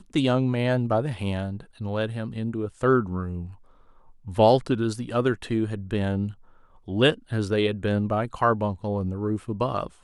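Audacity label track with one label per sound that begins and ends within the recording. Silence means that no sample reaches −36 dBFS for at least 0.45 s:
4.270000	6.320000	sound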